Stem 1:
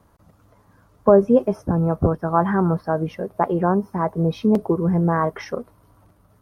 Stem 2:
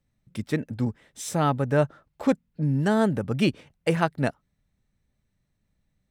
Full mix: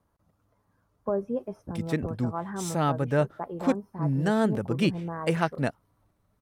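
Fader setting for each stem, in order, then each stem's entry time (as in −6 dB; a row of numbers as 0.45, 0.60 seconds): −15.0, −2.5 decibels; 0.00, 1.40 seconds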